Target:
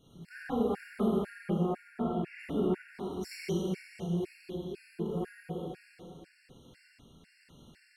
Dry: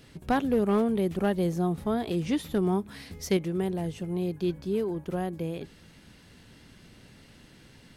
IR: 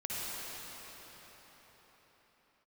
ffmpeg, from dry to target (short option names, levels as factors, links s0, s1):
-filter_complex "[0:a]tremolo=f=1.2:d=0.43,asettb=1/sr,asplit=3[s0][s1][s2];[s0]atrim=end=1.314[s3];[s1]atrim=start=1.31:end=2.84,asetpts=PTS-STARTPTS,afade=t=in:d=0.004:c=qsin,afade=t=out:st=1.526:d=0.004:c=qsin,highshelf=f=3300:t=q:w=1.5:g=-11[s4];[s2]atrim=start=2.836[s5];[s3][s4]acrossfade=d=0.004:c1=hsin:c2=qsin[s6];[s6][s5]acrossfade=d=0.004:c1=qsin:c2=hsin[s7];[1:a]atrim=start_sample=2205,asetrate=88200,aresample=44100[s8];[s7][s8]afir=irnorm=-1:irlink=0,afftfilt=real='re*gt(sin(2*PI*2*pts/sr)*(1-2*mod(floor(b*sr/1024/1400),2)),0)':imag='im*gt(sin(2*PI*2*pts/sr)*(1-2*mod(floor(b*sr/1024/1400),2)),0)':win_size=1024:overlap=0.75"